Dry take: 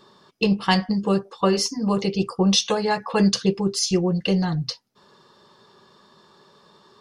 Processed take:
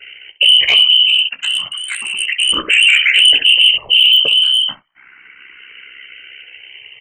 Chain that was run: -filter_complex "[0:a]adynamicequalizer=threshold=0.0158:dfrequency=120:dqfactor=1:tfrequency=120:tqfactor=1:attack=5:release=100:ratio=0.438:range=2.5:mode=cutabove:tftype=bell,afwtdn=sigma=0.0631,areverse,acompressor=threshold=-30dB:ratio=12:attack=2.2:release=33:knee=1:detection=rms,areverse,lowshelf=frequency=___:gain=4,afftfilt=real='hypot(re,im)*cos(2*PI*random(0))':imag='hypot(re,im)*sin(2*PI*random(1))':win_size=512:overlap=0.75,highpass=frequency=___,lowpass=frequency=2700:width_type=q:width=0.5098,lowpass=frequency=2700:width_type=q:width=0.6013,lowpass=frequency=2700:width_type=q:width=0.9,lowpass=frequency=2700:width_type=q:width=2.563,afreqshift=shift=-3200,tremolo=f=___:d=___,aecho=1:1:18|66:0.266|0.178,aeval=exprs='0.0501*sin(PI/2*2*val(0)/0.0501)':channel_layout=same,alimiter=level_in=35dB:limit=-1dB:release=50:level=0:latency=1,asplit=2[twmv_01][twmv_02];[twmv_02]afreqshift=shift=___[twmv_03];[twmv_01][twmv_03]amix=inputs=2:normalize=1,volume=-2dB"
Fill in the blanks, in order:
280, 60, 66, 0.621, 0.32